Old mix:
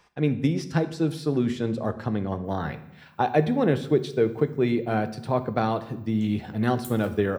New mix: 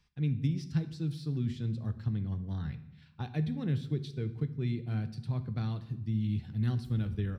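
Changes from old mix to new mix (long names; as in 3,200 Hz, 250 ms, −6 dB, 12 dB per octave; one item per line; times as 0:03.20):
background: add spectral tilt −4.5 dB per octave
master: add drawn EQ curve 120 Hz 0 dB, 600 Hz −26 dB, 4,400 Hz −8 dB, 6,800 Hz −14 dB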